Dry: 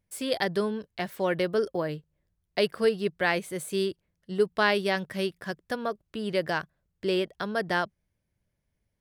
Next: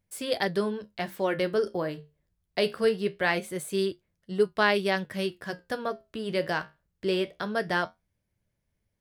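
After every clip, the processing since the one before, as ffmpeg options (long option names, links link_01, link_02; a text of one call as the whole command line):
ffmpeg -i in.wav -af "flanger=delay=9.2:depth=7.6:regen=-65:speed=0.23:shape=sinusoidal,volume=4dB" out.wav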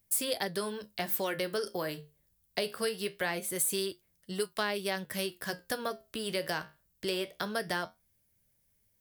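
ffmpeg -i in.wav -filter_complex "[0:a]acrossover=split=530|1400[link_01][link_02][link_03];[link_01]acompressor=threshold=-37dB:ratio=4[link_04];[link_02]acompressor=threshold=-36dB:ratio=4[link_05];[link_03]acompressor=threshold=-40dB:ratio=4[link_06];[link_04][link_05][link_06]amix=inputs=3:normalize=0,aemphasis=mode=production:type=75fm" out.wav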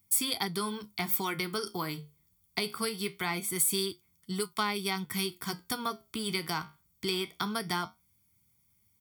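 ffmpeg -i in.wav -af "highpass=73,aecho=1:1:0.9:0.98" out.wav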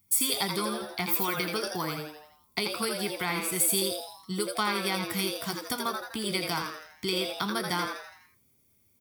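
ffmpeg -i in.wav -filter_complex "[0:a]asplit=7[link_01][link_02][link_03][link_04][link_05][link_06][link_07];[link_02]adelay=83,afreqshift=150,volume=-5dB[link_08];[link_03]adelay=166,afreqshift=300,volume=-11.2dB[link_09];[link_04]adelay=249,afreqshift=450,volume=-17.4dB[link_10];[link_05]adelay=332,afreqshift=600,volume=-23.6dB[link_11];[link_06]adelay=415,afreqshift=750,volume=-29.8dB[link_12];[link_07]adelay=498,afreqshift=900,volume=-36dB[link_13];[link_01][link_08][link_09][link_10][link_11][link_12][link_13]amix=inputs=7:normalize=0,volume=1.5dB" out.wav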